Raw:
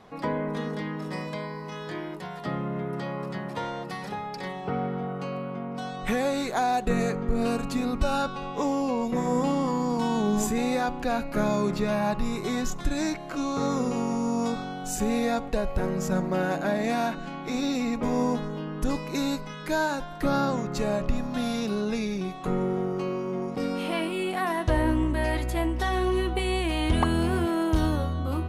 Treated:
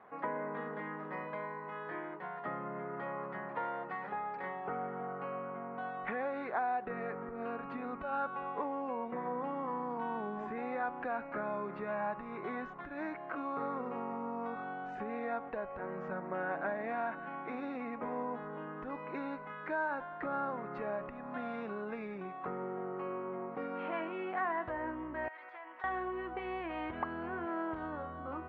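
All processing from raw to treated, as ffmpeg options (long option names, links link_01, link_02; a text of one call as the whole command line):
ffmpeg -i in.wav -filter_complex "[0:a]asettb=1/sr,asplit=3[link_01][link_02][link_03];[link_01]atrim=end=25.284[link_04];[link_02]atrim=start=25.28:end=25.84,asetpts=PTS-STARTPTS,afade=type=in:duration=0.004:curve=qsin,afade=type=out:start_time=0.556:duration=0.004:curve=qsin,highpass=980,acompressor=threshold=-39dB:ratio=12:attack=3.2:release=140:knee=1:detection=peak[link_05];[link_03]atrim=start=25.836[link_06];[link_04][link_05]acrossfade=duration=0.004:curve1=hsin:curve2=qsin[link_07];[link_07][link_06]acrossfade=duration=0.004:curve1=qsin:curve2=hsin,lowpass=frequency=1800:width=0.5412,lowpass=frequency=1800:width=1.3066,acompressor=threshold=-27dB:ratio=4,highpass=frequency=1100:poles=1,volume=1dB" out.wav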